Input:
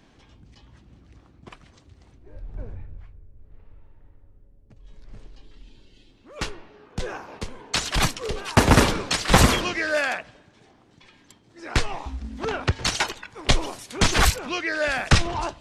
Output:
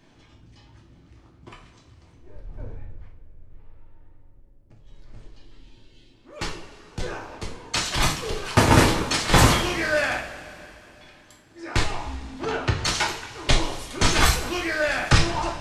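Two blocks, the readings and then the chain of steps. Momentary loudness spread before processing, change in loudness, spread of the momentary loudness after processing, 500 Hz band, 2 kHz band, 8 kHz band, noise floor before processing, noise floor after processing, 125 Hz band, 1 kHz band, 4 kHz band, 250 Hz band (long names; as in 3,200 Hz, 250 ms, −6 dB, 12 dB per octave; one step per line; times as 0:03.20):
20 LU, +0.5 dB, 21 LU, +0.5 dB, +0.5 dB, +0.5 dB, −56 dBFS, −54 dBFS, +0.5 dB, +1.0 dB, +0.5 dB, 0.0 dB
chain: coupled-rooms reverb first 0.46 s, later 3.2 s, from −18 dB, DRR −1 dB
level −3 dB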